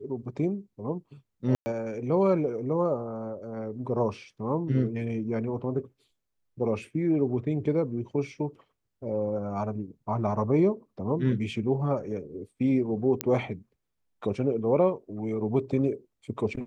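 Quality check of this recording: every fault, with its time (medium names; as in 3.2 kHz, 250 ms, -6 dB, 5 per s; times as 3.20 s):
1.55–1.66 s: dropout 110 ms
13.21 s: pop -9 dBFS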